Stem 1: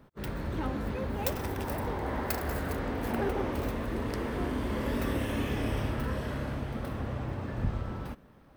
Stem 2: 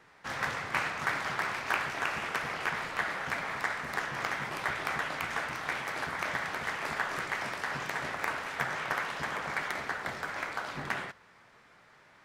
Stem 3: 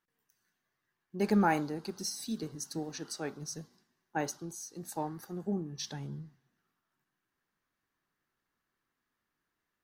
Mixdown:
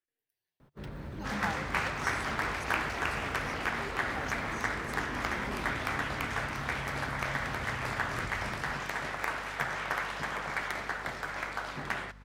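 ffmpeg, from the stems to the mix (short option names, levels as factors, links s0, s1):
-filter_complex "[0:a]acrossover=split=6500[s0][s1];[s1]acompressor=threshold=0.001:ratio=4:attack=1:release=60[s2];[s0][s2]amix=inputs=2:normalize=0,equalizer=f=140:w=4.5:g=6.5,acompressor=threshold=0.0224:ratio=6,adelay=600,volume=0.596[s3];[1:a]aeval=exprs='val(0)+0.00316*(sin(2*PI*50*n/s)+sin(2*PI*2*50*n/s)/2+sin(2*PI*3*50*n/s)/3+sin(2*PI*4*50*n/s)/4+sin(2*PI*5*50*n/s)/5)':c=same,adelay=1000,volume=0.944[s4];[2:a]bandreject=f=50:t=h:w=6,bandreject=f=100:t=h:w=6,bandreject=f=150:t=h:w=6,bandreject=f=200:t=h:w=6,asplit=2[s5][s6];[s6]afreqshift=0.34[s7];[s5][s7]amix=inputs=2:normalize=1,volume=0.398[s8];[s3][s4][s8]amix=inputs=3:normalize=0"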